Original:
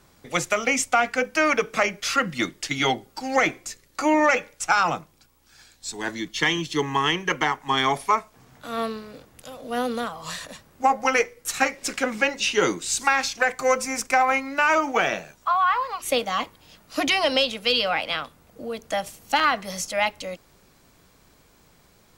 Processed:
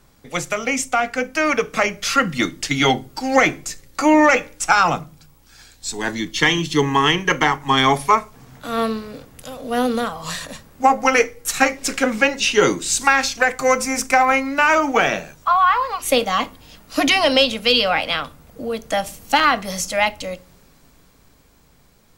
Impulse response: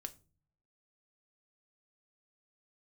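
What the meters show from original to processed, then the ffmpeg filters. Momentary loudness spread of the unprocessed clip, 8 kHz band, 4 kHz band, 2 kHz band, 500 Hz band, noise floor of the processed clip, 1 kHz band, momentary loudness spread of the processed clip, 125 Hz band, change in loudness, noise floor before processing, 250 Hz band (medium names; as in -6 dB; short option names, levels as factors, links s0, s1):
13 LU, +5.0 dB, +5.5 dB, +4.5 dB, +5.5 dB, -53 dBFS, +5.0 dB, 13 LU, +8.0 dB, +5.0 dB, -58 dBFS, +7.5 dB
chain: -filter_complex "[0:a]dynaudnorm=f=210:g=17:m=2.51,asplit=2[s0][s1];[1:a]atrim=start_sample=2205,lowshelf=f=210:g=8.5,highshelf=f=10000:g=5[s2];[s1][s2]afir=irnorm=-1:irlink=0,volume=1.5[s3];[s0][s3]amix=inputs=2:normalize=0,volume=0.501"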